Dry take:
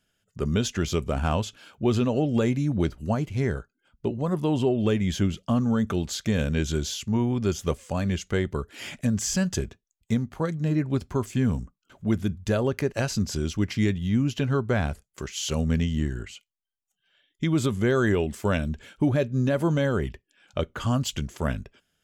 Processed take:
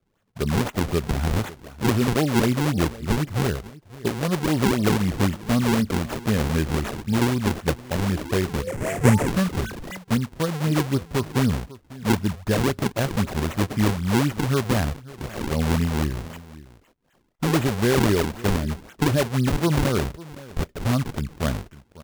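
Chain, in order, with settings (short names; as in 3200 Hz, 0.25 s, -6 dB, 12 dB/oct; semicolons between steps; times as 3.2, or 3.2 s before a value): echo 0.549 s -19 dB; 8.07–9.98 painted sound rise 270–2100 Hz -38 dBFS; decimation with a swept rate 42×, swing 160% 3.9 Hz; 8.67–9.28 graphic EQ 125/500/2000/4000/8000 Hz +8/+9/+8/-9/+10 dB; gain +2.5 dB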